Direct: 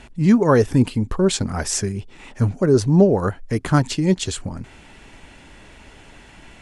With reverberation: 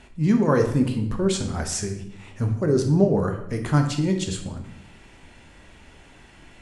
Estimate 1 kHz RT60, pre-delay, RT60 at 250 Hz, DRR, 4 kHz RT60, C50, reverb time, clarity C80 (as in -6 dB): 0.70 s, 11 ms, 1.0 s, 4.5 dB, 0.60 s, 7.5 dB, 0.80 s, 11.0 dB